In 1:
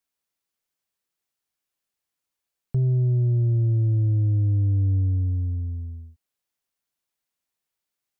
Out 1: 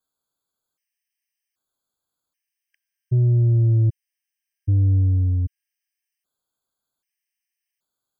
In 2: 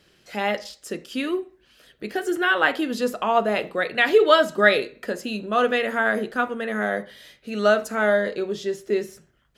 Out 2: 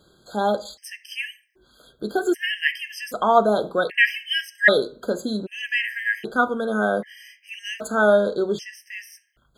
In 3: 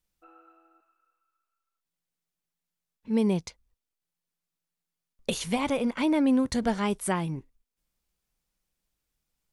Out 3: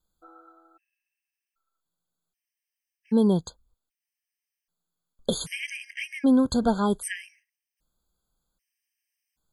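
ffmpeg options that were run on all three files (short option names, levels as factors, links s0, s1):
-af "bandreject=f=3800:w=25,afftfilt=real='re*gt(sin(2*PI*0.64*pts/sr)*(1-2*mod(floor(b*sr/1024/1600),2)),0)':imag='im*gt(sin(2*PI*0.64*pts/sr)*(1-2*mod(floor(b*sr/1024/1600),2)),0)':win_size=1024:overlap=0.75,volume=1.58"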